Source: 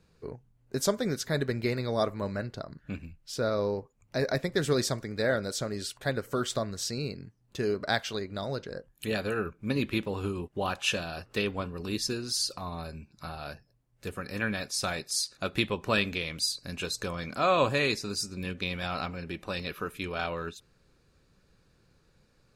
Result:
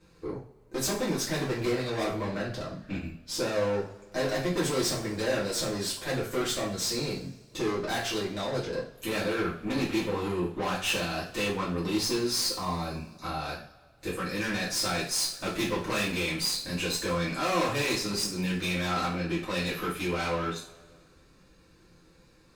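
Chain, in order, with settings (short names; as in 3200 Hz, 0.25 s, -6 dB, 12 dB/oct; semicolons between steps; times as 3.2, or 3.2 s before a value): tube stage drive 34 dB, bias 0.4; two-slope reverb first 0.39 s, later 1.8 s, from -21 dB, DRR -8.5 dB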